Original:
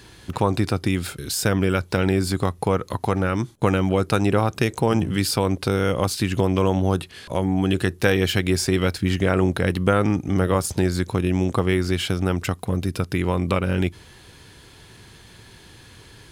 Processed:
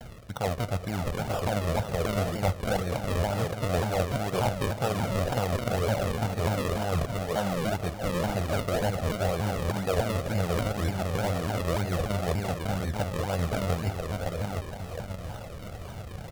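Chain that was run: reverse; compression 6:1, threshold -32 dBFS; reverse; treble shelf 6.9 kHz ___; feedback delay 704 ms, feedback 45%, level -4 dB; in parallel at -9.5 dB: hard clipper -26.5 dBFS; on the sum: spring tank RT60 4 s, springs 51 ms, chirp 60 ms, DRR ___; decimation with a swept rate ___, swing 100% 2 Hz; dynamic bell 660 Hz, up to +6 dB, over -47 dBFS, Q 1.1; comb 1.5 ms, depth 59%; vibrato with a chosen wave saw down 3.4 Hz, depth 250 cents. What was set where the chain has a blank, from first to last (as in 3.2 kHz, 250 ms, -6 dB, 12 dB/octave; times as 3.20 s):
-3 dB, 15 dB, 40×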